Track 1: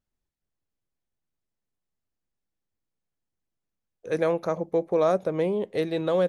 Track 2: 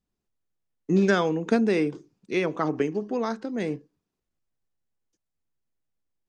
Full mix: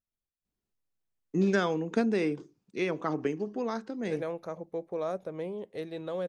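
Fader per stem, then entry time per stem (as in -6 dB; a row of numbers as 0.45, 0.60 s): -11.0, -5.0 dB; 0.00, 0.45 s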